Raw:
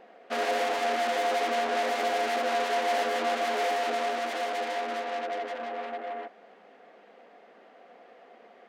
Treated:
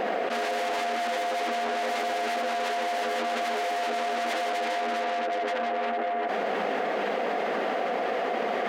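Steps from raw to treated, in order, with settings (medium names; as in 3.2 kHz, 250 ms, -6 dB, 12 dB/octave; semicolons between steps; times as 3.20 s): level flattener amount 100%; trim -3.5 dB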